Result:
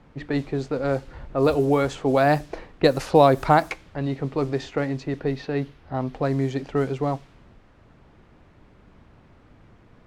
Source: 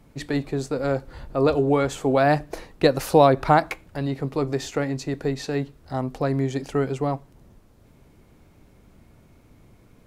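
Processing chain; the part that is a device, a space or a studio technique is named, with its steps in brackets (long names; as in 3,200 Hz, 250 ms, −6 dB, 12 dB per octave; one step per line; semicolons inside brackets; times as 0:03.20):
cassette deck with a dynamic noise filter (white noise bed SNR 26 dB; low-pass that shuts in the quiet parts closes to 1,400 Hz, open at −15 dBFS)
0:05.19–0:06.14: parametric band 7,600 Hz −8 dB 0.51 octaves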